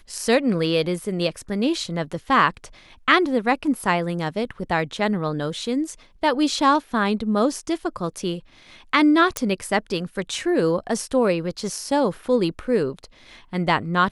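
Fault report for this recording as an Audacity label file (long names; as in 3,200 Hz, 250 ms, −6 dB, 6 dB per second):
9.370000	9.370000	click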